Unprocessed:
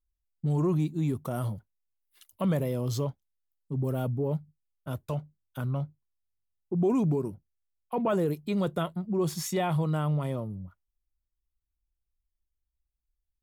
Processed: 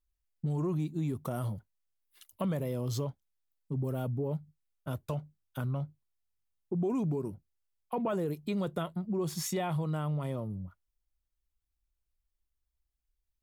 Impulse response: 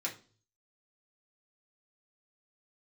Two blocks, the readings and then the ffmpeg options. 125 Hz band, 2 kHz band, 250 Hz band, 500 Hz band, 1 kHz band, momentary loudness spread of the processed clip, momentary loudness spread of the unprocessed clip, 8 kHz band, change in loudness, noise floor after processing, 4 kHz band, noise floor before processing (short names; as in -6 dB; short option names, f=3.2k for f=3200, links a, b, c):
-4.0 dB, -4.5 dB, -4.5 dB, -5.0 dB, -4.5 dB, 9 LU, 12 LU, -1.5 dB, -4.5 dB, -84 dBFS, -3.0 dB, -84 dBFS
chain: -af "acompressor=threshold=-31dB:ratio=2.5"